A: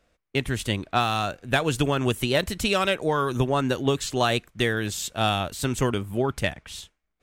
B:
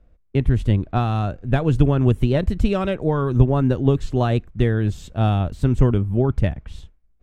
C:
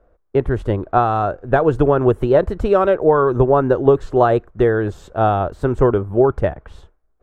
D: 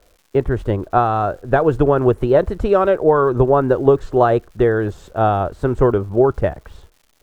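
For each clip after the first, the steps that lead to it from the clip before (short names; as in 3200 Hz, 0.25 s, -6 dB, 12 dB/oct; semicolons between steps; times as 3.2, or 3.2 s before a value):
tilt -4.5 dB/oct; gain -2.5 dB
band shelf 750 Hz +14.5 dB 2.6 oct; gain -4.5 dB
crackle 350/s -43 dBFS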